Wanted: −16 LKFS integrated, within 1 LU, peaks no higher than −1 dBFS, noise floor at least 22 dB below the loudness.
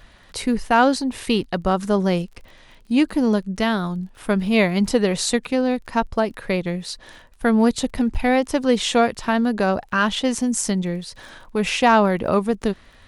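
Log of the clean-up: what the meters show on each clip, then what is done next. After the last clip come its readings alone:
crackle rate 29 per second; integrated loudness −21.0 LKFS; sample peak −4.0 dBFS; target loudness −16.0 LKFS
→ click removal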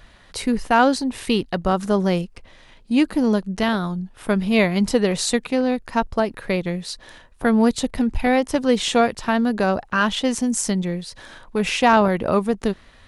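crackle rate 0.076 per second; integrated loudness −21.0 LKFS; sample peak −4.0 dBFS; target loudness −16.0 LKFS
→ level +5 dB
brickwall limiter −1 dBFS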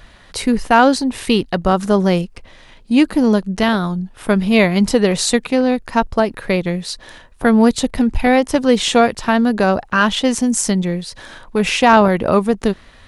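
integrated loudness −16.0 LKFS; sample peak −1.0 dBFS; background noise floor −45 dBFS

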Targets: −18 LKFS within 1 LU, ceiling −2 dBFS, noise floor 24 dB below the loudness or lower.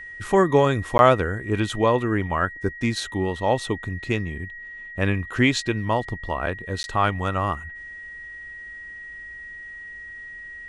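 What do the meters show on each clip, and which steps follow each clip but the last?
number of dropouts 2; longest dropout 11 ms; interfering tone 1,900 Hz; level of the tone −36 dBFS; integrated loudness −23.0 LKFS; sample peak −2.5 dBFS; target loudness −18.0 LKFS
→ repair the gap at 0:00.98/0:06.83, 11 ms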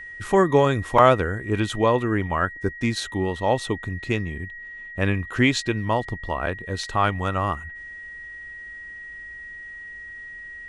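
number of dropouts 0; interfering tone 1,900 Hz; level of the tone −36 dBFS
→ notch filter 1,900 Hz, Q 30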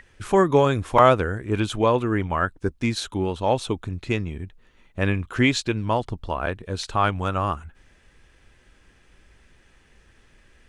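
interfering tone none found; integrated loudness −23.0 LKFS; sample peak −2.5 dBFS; target loudness −18.0 LKFS
→ level +5 dB
brickwall limiter −2 dBFS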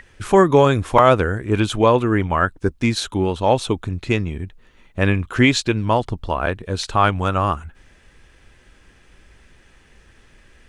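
integrated loudness −18.5 LKFS; sample peak −2.0 dBFS; background noise floor −53 dBFS

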